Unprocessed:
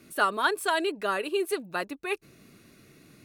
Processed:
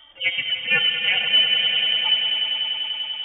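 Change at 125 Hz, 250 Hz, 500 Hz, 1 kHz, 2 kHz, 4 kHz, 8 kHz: can't be measured, below −10 dB, −11.5 dB, −9.0 dB, +8.5 dB, +22.5 dB, below −40 dB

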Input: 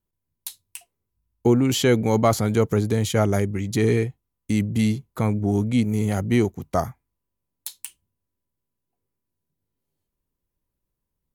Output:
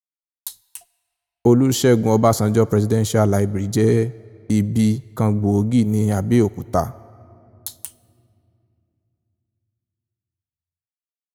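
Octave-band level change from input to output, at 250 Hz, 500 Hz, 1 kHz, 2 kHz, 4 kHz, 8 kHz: +4.0, +4.0, +3.5, −1.5, −0.5, +3.5 decibels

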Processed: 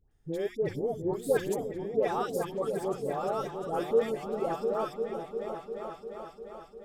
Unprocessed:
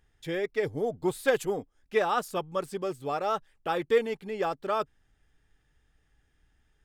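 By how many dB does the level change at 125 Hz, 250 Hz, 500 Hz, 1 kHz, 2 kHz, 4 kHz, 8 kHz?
+1.5, +0.5, 0.0, −3.0, −8.5, −6.5, −1.5 decibels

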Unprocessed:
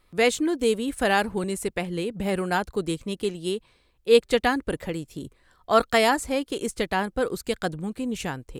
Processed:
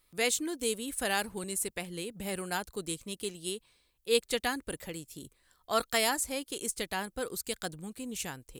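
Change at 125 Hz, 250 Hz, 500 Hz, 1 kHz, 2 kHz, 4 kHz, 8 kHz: −11.5, −11.5, −11.0, −10.0, −7.5, −4.0, +2.5 decibels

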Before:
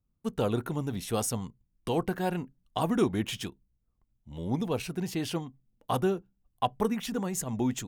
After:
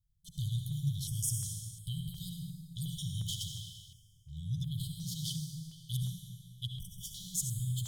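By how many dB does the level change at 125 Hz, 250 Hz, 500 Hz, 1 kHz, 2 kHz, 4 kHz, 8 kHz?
+0.5 dB, −13.5 dB, below −40 dB, below −40 dB, below −35 dB, −1.0 dB, +0.5 dB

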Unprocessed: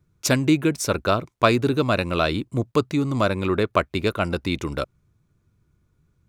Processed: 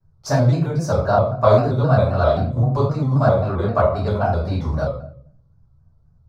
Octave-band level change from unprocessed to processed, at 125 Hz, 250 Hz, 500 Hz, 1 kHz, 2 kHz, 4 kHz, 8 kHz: +9.0 dB, −1.5 dB, +5.0 dB, +4.0 dB, −4.5 dB, −8.0 dB, can't be measured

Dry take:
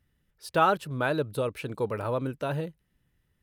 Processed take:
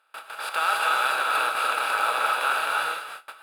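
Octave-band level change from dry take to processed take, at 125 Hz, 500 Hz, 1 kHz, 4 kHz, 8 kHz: below −25 dB, −6.0 dB, +7.0 dB, +13.0 dB, +13.0 dB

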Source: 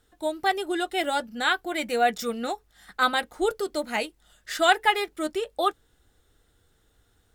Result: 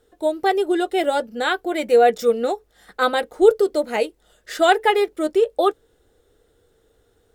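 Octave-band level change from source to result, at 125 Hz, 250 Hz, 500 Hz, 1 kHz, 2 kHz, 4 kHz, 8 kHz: can't be measured, +7.0 dB, +11.0 dB, +4.0 dB, +1.0 dB, 0.0 dB, 0.0 dB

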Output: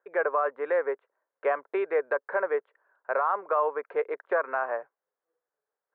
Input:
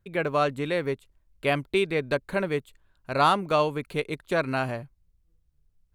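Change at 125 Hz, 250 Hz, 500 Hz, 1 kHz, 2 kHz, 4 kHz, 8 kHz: below −35 dB, −13.0 dB, −0.5 dB, −2.0 dB, −2.0 dB, below −25 dB, below −30 dB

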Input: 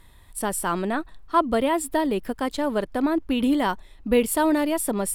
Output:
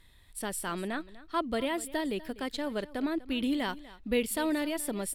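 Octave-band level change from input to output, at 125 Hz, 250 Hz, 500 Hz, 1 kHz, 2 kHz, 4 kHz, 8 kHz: −8.5, −8.5, −9.5, −11.5, −5.5, −3.0, −7.5 decibels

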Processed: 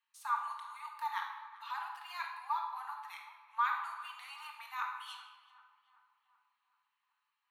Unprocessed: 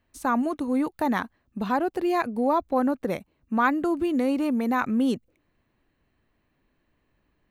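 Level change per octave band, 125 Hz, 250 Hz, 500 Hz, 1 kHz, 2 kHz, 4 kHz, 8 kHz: below −40 dB, below −40 dB, below −40 dB, −9.0 dB, −10.0 dB, −5.5 dB, can't be measured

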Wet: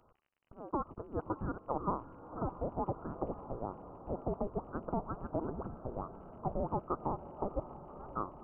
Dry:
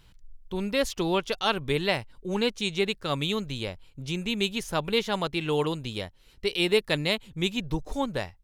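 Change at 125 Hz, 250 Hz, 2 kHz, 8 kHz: −8.5 dB, −10.5 dB, −28.0 dB, below −40 dB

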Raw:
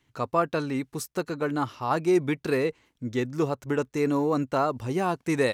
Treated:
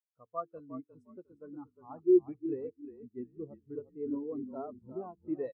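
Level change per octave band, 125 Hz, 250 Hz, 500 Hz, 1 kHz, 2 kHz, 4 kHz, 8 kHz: −22.0 dB, −7.5 dB, −8.0 dB, −18.0 dB, below −30 dB, below −40 dB, below −40 dB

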